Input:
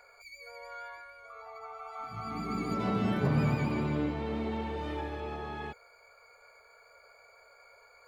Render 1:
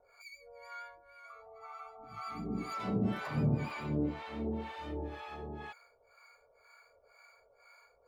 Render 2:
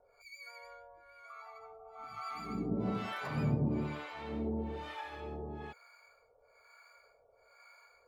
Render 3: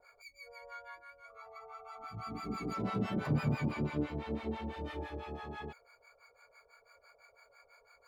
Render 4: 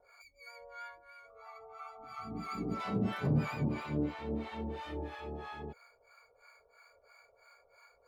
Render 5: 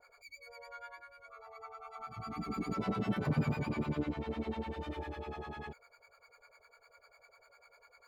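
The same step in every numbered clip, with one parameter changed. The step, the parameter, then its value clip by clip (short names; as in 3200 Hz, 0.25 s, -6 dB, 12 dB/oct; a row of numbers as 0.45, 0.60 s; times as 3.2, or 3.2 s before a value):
harmonic tremolo, rate: 2, 1.1, 6, 3, 10 Hz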